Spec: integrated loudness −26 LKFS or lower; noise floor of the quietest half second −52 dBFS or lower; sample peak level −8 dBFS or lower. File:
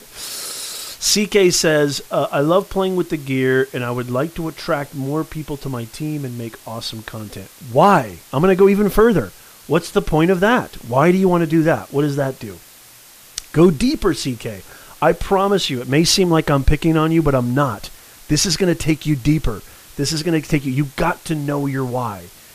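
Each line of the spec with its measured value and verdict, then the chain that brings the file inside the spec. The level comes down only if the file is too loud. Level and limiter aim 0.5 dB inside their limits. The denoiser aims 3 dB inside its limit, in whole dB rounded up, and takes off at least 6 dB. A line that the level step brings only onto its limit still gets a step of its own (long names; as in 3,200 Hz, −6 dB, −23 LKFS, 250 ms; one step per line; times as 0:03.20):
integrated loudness −18.0 LKFS: out of spec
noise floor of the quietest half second −44 dBFS: out of spec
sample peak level −2.5 dBFS: out of spec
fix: level −8.5 dB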